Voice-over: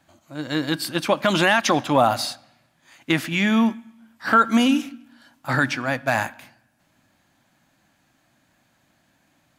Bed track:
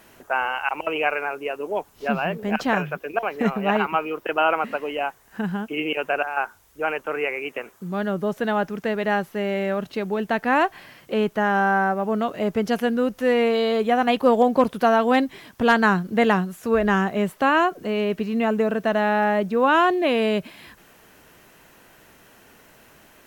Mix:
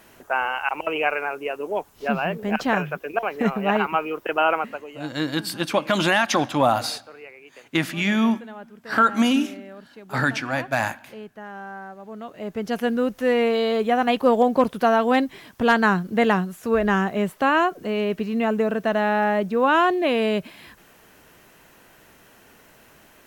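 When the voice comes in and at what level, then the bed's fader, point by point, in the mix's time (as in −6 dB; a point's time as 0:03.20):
4.65 s, −1.5 dB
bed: 0:04.56 0 dB
0:05.09 −17 dB
0:11.97 −17 dB
0:12.87 −0.5 dB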